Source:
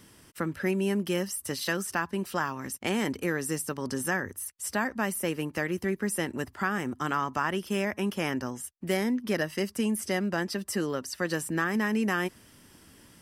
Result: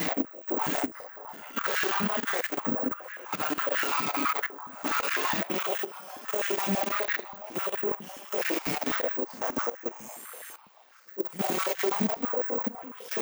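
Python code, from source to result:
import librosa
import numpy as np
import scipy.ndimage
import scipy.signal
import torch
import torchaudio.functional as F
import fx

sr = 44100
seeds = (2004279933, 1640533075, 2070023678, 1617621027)

p1 = 10.0 ** (-28.5 / 20.0) * np.tanh(x / 10.0 ** (-28.5 / 20.0))
p2 = fx.paulstretch(p1, sr, seeds[0], factor=4.3, window_s=0.05, from_s=6.24)
p3 = fx.rider(p2, sr, range_db=4, speed_s=2.0)
p4 = fx.cheby_harmonics(p3, sr, harmonics=(3, 4, 6, 7), levels_db=(-28, -22, -8, -31), full_scale_db=-19.5)
p5 = fx.high_shelf(p4, sr, hz=8600.0, db=5.0)
p6 = p5 + fx.echo_stepped(p5, sr, ms=475, hz=790.0, octaves=0.7, feedback_pct=70, wet_db=-7.0, dry=0)
p7 = (np.kron(scipy.signal.resample_poly(p6, 1, 2), np.eye(2)[0]) * 2)[:len(p6)]
p8 = fx.level_steps(p7, sr, step_db=15)
p9 = fx.peak_eq(p8, sr, hz=6700.0, db=7.5, octaves=0.21)
y = fx.filter_held_highpass(p9, sr, hz=12.0, low_hz=200.0, high_hz=1700.0)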